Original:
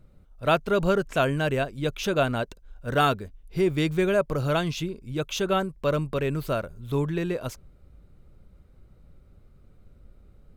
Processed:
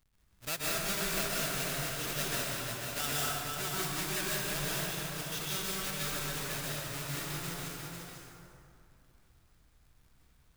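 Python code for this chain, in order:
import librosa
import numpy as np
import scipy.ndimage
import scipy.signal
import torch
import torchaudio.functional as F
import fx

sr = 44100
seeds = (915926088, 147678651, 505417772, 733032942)

p1 = fx.halfwave_hold(x, sr)
p2 = fx.high_shelf(p1, sr, hz=7400.0, db=5.5)
p3 = fx.hpss(p2, sr, part='harmonic', gain_db=-3)
p4 = fx.tone_stack(p3, sr, knobs='5-5-5')
p5 = p4 + fx.echo_single(p4, sr, ms=494, db=-6.0, dry=0)
p6 = fx.rev_plate(p5, sr, seeds[0], rt60_s=2.6, hf_ratio=0.55, predelay_ms=115, drr_db=-6.5)
y = F.gain(torch.from_numpy(p6), -7.5).numpy()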